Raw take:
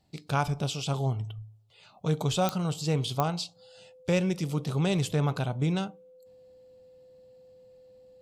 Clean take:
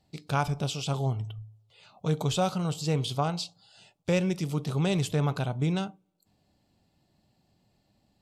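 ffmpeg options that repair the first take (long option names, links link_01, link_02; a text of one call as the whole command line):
ffmpeg -i in.wav -af "adeclick=threshold=4,bandreject=frequency=510:width=30" out.wav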